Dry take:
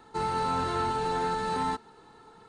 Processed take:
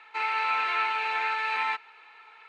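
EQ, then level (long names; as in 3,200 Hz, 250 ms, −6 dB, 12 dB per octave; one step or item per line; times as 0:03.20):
high-pass filter 740 Hz 12 dB per octave
low-pass with resonance 2,400 Hz, resonance Q 9.6
spectral tilt +3 dB per octave
0.0 dB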